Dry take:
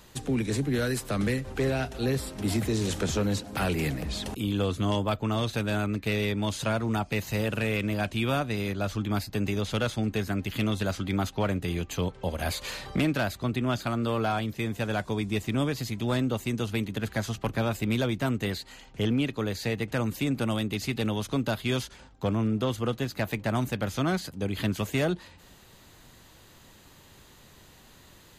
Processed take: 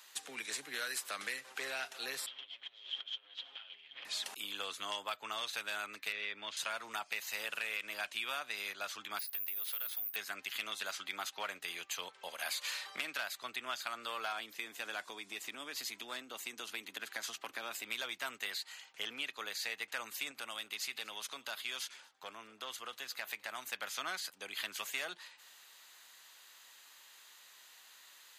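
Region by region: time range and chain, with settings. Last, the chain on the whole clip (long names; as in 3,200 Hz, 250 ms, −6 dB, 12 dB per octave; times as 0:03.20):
0:02.26–0:04.05: lower of the sound and its delayed copy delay 7.4 ms + compressor whose output falls as the input rises −35 dBFS, ratio −0.5 + transistor ladder low-pass 3,300 Hz, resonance 90%
0:06.12–0:06.57: low-pass filter 3,100 Hz + parametric band 820 Hz −6 dB 0.79 octaves
0:09.19–0:10.16: downward compressor, threshold −31 dBFS + transistor ladder low-pass 7,000 Hz, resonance 20% + bad sample-rate conversion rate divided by 3×, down none, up zero stuff
0:14.32–0:17.85: parametric band 290 Hz +8.5 dB 1 octave + downward compressor, threshold −24 dBFS
0:20.31–0:23.66: downward compressor 2 to 1, threshold −31 dBFS + single-tap delay 238 ms −22.5 dB + one half of a high-frequency compander decoder only
whole clip: high-pass filter 1,300 Hz 12 dB per octave; downward compressor, threshold −33 dBFS; level −1 dB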